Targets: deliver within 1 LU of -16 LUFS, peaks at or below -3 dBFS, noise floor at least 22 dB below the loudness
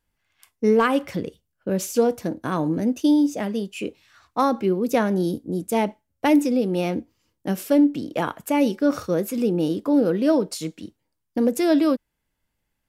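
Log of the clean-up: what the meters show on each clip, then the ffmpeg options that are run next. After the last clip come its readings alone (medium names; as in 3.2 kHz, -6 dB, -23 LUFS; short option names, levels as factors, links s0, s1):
loudness -22.5 LUFS; peak level -8.0 dBFS; loudness target -16.0 LUFS
-> -af "volume=2.11,alimiter=limit=0.708:level=0:latency=1"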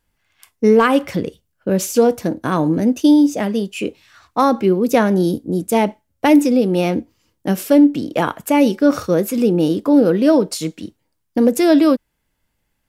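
loudness -16.0 LUFS; peak level -3.0 dBFS; noise floor -71 dBFS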